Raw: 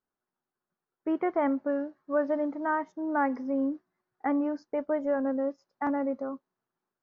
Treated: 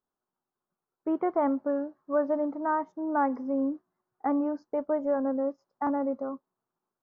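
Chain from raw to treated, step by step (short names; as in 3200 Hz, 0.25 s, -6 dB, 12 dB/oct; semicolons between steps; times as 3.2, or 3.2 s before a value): resonant high shelf 1500 Hz -7 dB, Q 1.5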